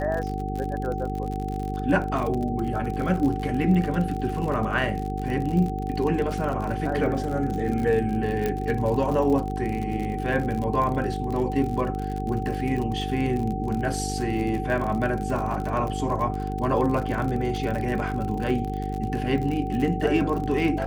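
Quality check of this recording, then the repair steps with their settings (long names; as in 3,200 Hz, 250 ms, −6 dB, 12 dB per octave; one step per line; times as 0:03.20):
mains buzz 50 Hz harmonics 9 −30 dBFS
surface crackle 54 per second −29 dBFS
whistle 760 Hz −32 dBFS
0:08.46: click −13 dBFS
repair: click removal
notch filter 760 Hz, Q 30
hum removal 50 Hz, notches 9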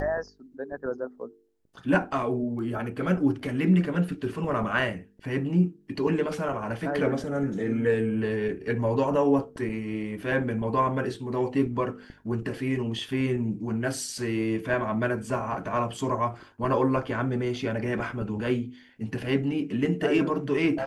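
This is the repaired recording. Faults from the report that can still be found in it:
none of them is left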